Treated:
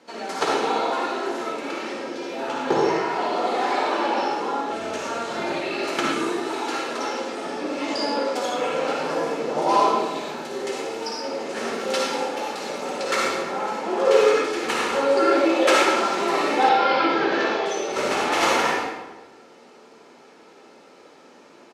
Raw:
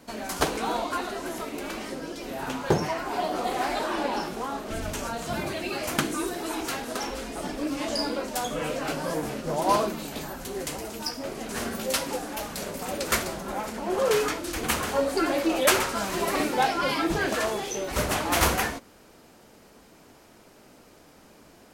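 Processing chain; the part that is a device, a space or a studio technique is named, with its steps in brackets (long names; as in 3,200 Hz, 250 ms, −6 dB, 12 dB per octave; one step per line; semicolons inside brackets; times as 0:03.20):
supermarket ceiling speaker (band-pass filter 270–5,300 Hz; convolution reverb RT60 1.2 s, pre-delay 49 ms, DRR −2.5 dB)
high-pass filter 81 Hz
comb filter 2.3 ms, depth 31%
0:16.69–0:17.66: low-pass filter 5,200 Hz 24 dB per octave
reverb whose tail is shaped and stops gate 240 ms falling, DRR 7 dB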